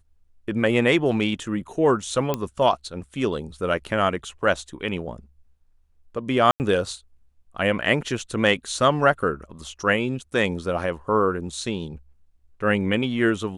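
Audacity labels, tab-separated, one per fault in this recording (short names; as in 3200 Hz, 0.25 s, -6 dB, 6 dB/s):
2.340000	2.340000	pop -10 dBFS
6.510000	6.600000	gap 89 ms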